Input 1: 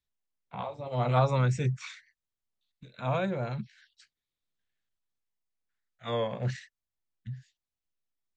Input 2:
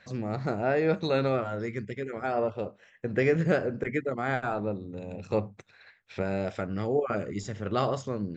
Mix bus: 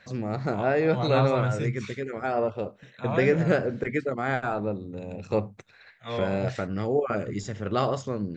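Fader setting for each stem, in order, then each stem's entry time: -1.0 dB, +2.0 dB; 0.00 s, 0.00 s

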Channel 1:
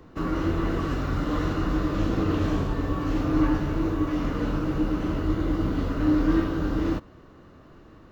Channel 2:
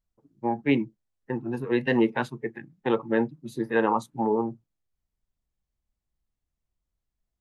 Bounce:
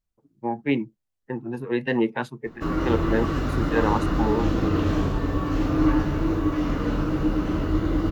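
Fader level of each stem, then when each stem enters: +2.0 dB, -0.5 dB; 2.45 s, 0.00 s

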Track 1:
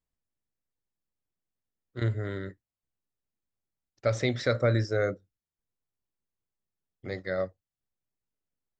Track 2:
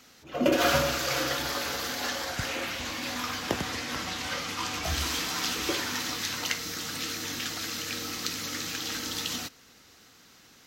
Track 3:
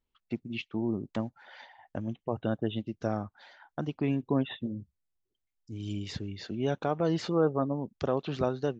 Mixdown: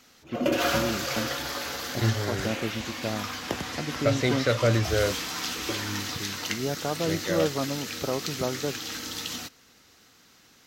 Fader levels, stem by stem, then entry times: +2.0 dB, -1.5 dB, -0.5 dB; 0.00 s, 0.00 s, 0.00 s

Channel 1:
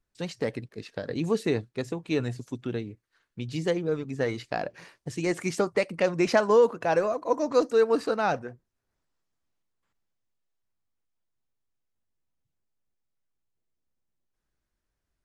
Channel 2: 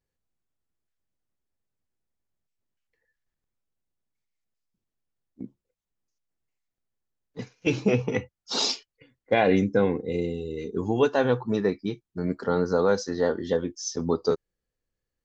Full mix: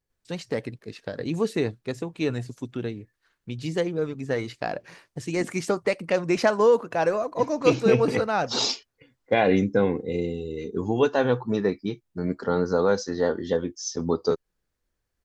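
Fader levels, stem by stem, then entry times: +1.0 dB, +0.5 dB; 0.10 s, 0.00 s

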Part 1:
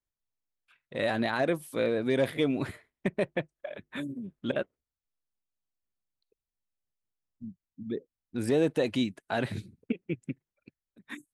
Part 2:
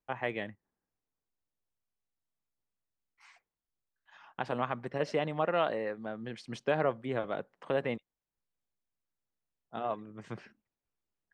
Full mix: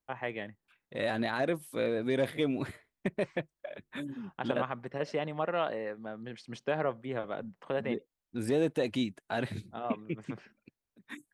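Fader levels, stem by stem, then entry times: -3.0 dB, -2.0 dB; 0.00 s, 0.00 s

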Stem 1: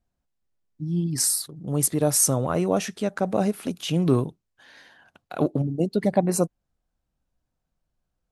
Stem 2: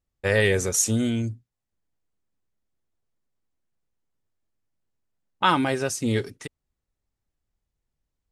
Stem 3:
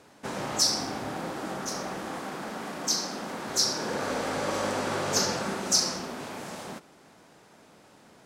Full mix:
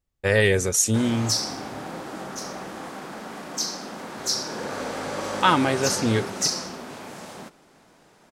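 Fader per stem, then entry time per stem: mute, +1.5 dB, -0.5 dB; mute, 0.00 s, 0.70 s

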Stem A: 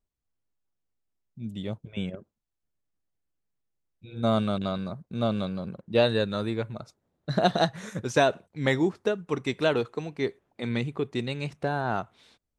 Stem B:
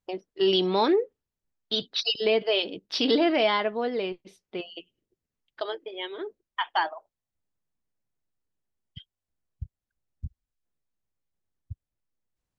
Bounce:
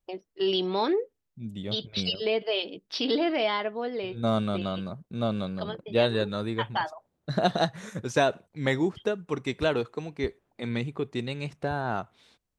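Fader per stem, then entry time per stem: -1.5 dB, -3.5 dB; 0.00 s, 0.00 s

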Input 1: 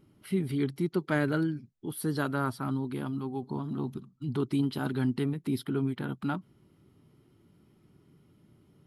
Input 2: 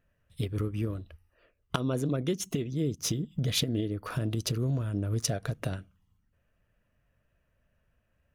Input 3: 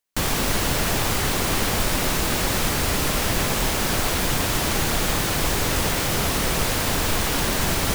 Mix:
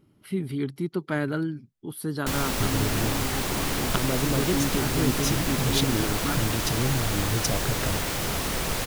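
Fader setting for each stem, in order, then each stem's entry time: +0.5 dB, +2.0 dB, -5.5 dB; 0.00 s, 2.20 s, 2.10 s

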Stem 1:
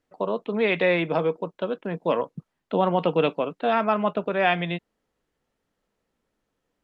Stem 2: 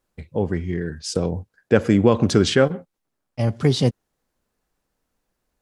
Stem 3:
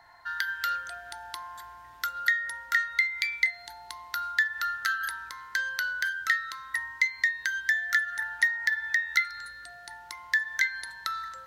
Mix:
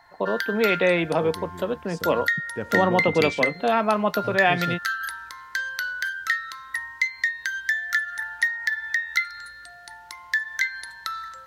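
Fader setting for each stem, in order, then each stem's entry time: +1.0 dB, -15.5 dB, +1.5 dB; 0.00 s, 0.85 s, 0.00 s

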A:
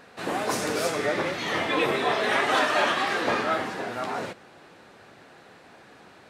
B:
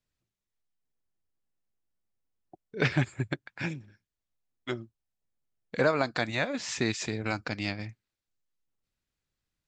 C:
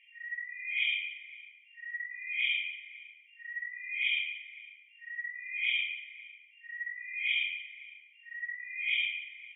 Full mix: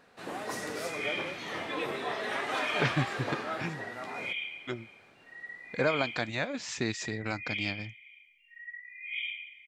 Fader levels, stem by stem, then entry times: -10.0 dB, -3.0 dB, -5.5 dB; 0.00 s, 0.00 s, 0.25 s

